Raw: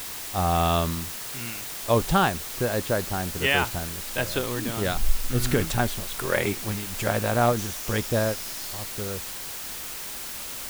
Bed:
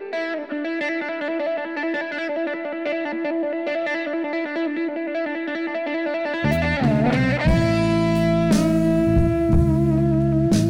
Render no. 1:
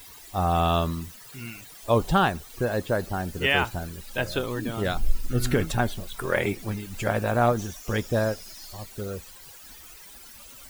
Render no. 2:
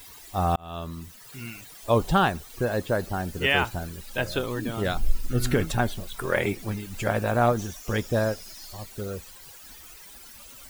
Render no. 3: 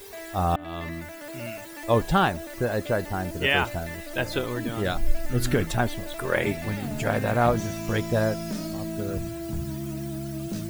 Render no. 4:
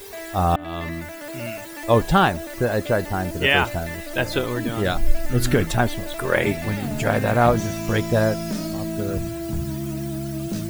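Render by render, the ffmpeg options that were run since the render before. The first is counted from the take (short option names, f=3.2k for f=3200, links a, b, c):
-af "afftdn=nr=15:nf=-36"
-filter_complex "[0:a]asplit=2[a][b];[a]atrim=end=0.56,asetpts=PTS-STARTPTS,afade=t=out:st=0.556:d=0.004:c=hsin[c];[b]atrim=start=0.56,asetpts=PTS-STARTPTS,afade=t=in:d=0.79[d];[c][d]concat=n=2:v=0:a=1"
-filter_complex "[1:a]volume=-14.5dB[a];[0:a][a]amix=inputs=2:normalize=0"
-af "volume=4.5dB"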